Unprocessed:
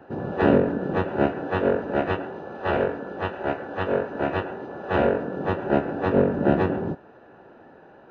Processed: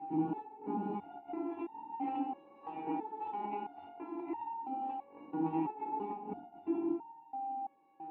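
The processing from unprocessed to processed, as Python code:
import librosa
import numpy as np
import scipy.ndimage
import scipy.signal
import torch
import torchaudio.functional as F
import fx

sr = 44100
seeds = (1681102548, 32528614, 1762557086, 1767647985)

y = fx.dynamic_eq(x, sr, hz=840.0, q=2.8, threshold_db=-41.0, ratio=4.0, max_db=8)
y = fx.over_compress(y, sr, threshold_db=-25.0, ratio=-0.5)
y = y + 10.0 ** (-35.0 / 20.0) * np.sin(2.0 * np.pi * 790.0 * np.arange(len(y)) / sr)
y = fx.vowel_filter(y, sr, vowel='u')
y = fx.echo_banded(y, sr, ms=84, feedback_pct=82, hz=680.0, wet_db=-12.5)
y = fx.rev_gated(y, sr, seeds[0], gate_ms=360, shape='falling', drr_db=10.5)
y = fx.resonator_held(y, sr, hz=3.0, low_hz=160.0, high_hz=920.0)
y = y * librosa.db_to_amplitude(14.0)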